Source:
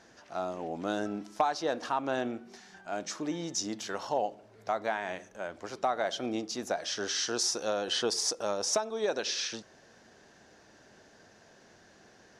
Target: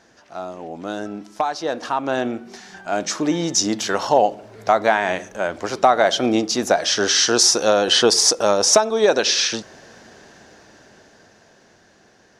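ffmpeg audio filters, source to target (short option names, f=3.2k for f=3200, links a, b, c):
-af "dynaudnorm=f=280:g=17:m=12dB,volume=3.5dB"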